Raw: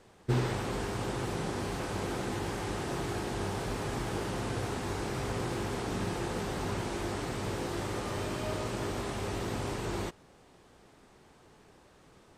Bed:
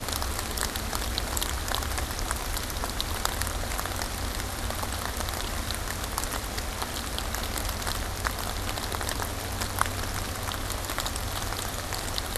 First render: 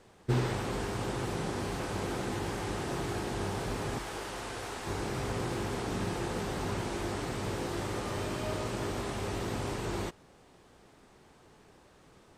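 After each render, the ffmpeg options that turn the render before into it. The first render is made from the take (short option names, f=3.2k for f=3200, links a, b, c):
-filter_complex "[0:a]asettb=1/sr,asplit=3[a][b][c];[a]atrim=end=3.984[d];[b]atrim=start=3.98:end=4.87,asetpts=PTS-STARTPTS,afade=t=in:d=0.004:c=qsin,afade=t=out:st=0.886:d=0.004:c=qsin,equalizer=f=140:t=o:w=2.7:g=-13[e];[c]atrim=start=4.866[f];[d][e]acrossfade=d=0.004:c1=hsin:c2=qsin[g];[g][f]acrossfade=d=0.004:c1=qsin:c2=hsin"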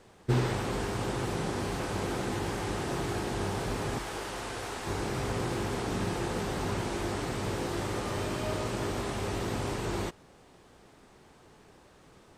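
-af "volume=2dB"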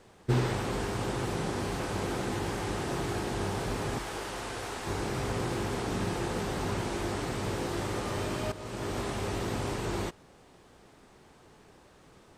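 -filter_complex "[0:a]asplit=2[a][b];[a]atrim=end=8.52,asetpts=PTS-STARTPTS,afade=t=out:st=8.516:d=0.004:c=hsin:silence=0.211349[c];[b]atrim=start=8.52,asetpts=PTS-STARTPTS,afade=t=in:d=0.46:silence=0.211349[d];[c][d]concat=n=2:v=0:a=1"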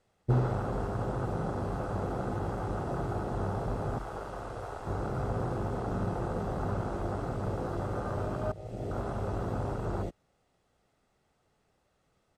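-af "aecho=1:1:1.5:0.35,afwtdn=0.0224"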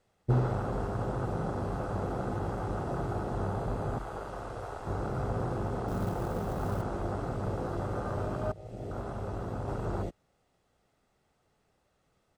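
-filter_complex "[0:a]asettb=1/sr,asplit=3[a][b][c];[a]atrim=end=3.444[d];[b]atrim=start=3.44:end=4.28,asetpts=PTS-STARTPTS,afade=t=in:d=0.004:c=qsin,afade=t=out:st=0.836:d=0.004:c=qsin,bandreject=f=5.5k:w=12[e];[c]atrim=start=4.276[f];[d][e]acrossfade=d=0.004:c1=hsin:c2=qsin[g];[g][f]acrossfade=d=0.004:c1=qsin:c2=hsin,asettb=1/sr,asplit=3[h][i][j];[h]atrim=end=5.884[k];[i]atrim=start=5.88:end=6.82,asetpts=PTS-STARTPTS,afade=t=in:d=0.004:c=qsin,afade=t=out:st=0.936:d=0.004:c=qsin,acrusher=bits=6:mode=log:mix=0:aa=0.000001[l];[j]atrim=start=6.816[m];[k][l]acrossfade=d=0.004:c1=hsin:c2=qsin[n];[n][m]acrossfade=d=0.004:c1=qsin:c2=hsin,asplit=3[o][p][q];[o]atrim=end=8.532[r];[p]atrim=start=8.528:end=9.682,asetpts=PTS-STARTPTS,volume=-3dB[s];[q]atrim=start=9.678[t];[r][s]acrossfade=d=0.004:c1=hsin:c2=hsin[u];[u][t]acrossfade=d=0.004:c1=hsin:c2=hsin"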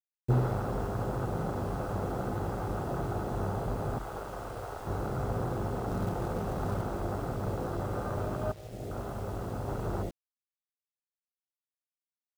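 -af "acrusher=bits=8:mix=0:aa=0.000001"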